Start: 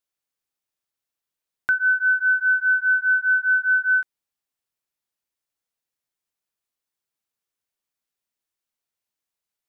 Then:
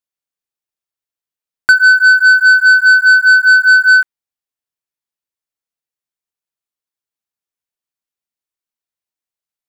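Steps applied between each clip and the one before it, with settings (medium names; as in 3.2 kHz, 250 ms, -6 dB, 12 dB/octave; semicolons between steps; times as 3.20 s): dynamic bell 1.5 kHz, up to +6 dB, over -29 dBFS, Q 0.82; transient shaper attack +6 dB, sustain 0 dB; waveshaping leveller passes 2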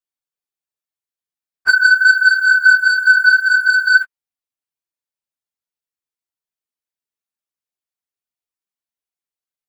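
phase randomisation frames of 50 ms; trim -4 dB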